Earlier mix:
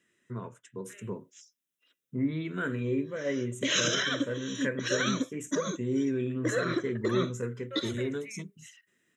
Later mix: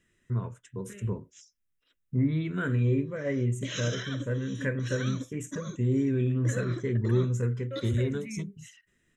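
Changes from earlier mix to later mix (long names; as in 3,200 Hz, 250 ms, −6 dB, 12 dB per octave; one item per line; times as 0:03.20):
second voice: remove high-pass with resonance 830 Hz, resonance Q 1.9
background −9.5 dB
master: remove high-pass filter 220 Hz 12 dB per octave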